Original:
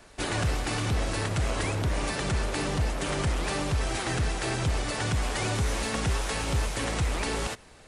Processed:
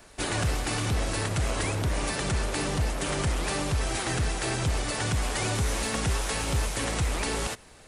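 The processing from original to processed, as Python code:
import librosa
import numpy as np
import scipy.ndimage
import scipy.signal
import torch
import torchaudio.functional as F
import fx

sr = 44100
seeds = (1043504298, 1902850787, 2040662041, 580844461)

y = fx.high_shelf(x, sr, hz=9200.0, db=8.5)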